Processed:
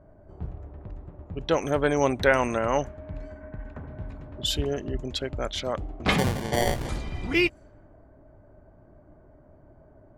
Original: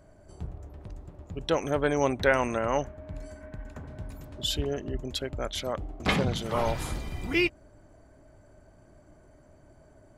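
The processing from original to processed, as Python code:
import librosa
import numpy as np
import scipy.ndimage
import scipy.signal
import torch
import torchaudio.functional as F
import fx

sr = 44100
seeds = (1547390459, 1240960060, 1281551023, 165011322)

y = fx.sample_hold(x, sr, seeds[0], rate_hz=1300.0, jitter_pct=0, at=(6.18, 6.89))
y = fx.env_lowpass(y, sr, base_hz=1100.0, full_db=-26.0)
y = y * 10.0 ** (2.5 / 20.0)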